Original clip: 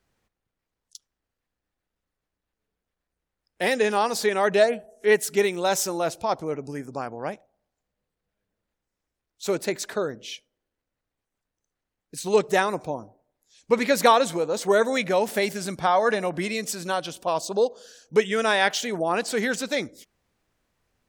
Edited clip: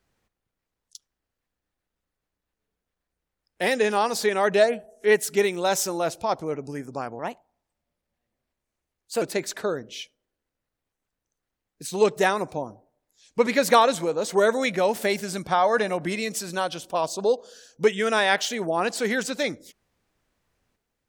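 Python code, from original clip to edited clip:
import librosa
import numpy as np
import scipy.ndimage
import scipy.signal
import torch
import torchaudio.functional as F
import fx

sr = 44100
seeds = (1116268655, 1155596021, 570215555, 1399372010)

y = fx.edit(x, sr, fx.speed_span(start_s=7.19, length_s=2.35, speed=1.16), tone=tone)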